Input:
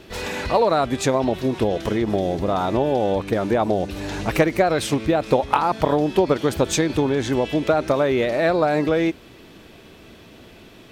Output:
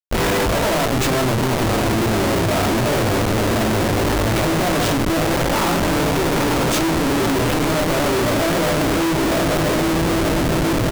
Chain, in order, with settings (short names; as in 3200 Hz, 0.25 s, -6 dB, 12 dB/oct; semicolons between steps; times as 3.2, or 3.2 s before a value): diffused feedback echo 0.936 s, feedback 54%, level -9 dB; tube stage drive 26 dB, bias 0.75; doubler 18 ms -5 dB; reverb RT60 0.75 s, pre-delay 3 ms, DRR 0 dB; Schmitt trigger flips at -30 dBFS; gain +6 dB